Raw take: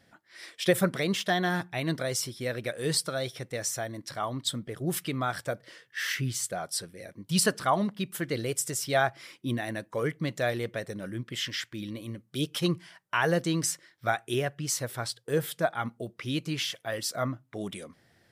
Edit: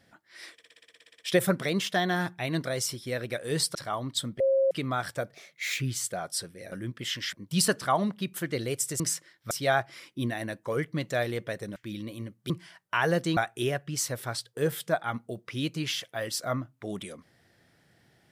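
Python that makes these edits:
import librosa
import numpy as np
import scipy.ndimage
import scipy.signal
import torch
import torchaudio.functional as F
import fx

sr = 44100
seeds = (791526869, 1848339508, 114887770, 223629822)

y = fx.edit(x, sr, fx.stutter(start_s=0.53, slice_s=0.06, count=12),
    fx.cut(start_s=3.09, length_s=0.96),
    fx.bleep(start_s=4.7, length_s=0.31, hz=538.0, db=-20.0),
    fx.speed_span(start_s=5.64, length_s=0.55, speed=1.2),
    fx.move(start_s=11.03, length_s=0.61, to_s=7.11),
    fx.cut(start_s=12.38, length_s=0.32),
    fx.move(start_s=13.57, length_s=0.51, to_s=8.78), tone=tone)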